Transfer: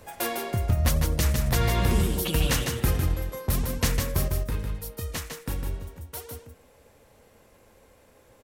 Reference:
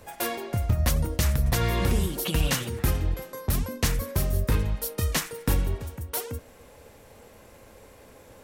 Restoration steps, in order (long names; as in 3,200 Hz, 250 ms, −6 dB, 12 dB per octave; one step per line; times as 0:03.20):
echo removal 153 ms −5.5 dB
level correction +7.5 dB, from 0:04.28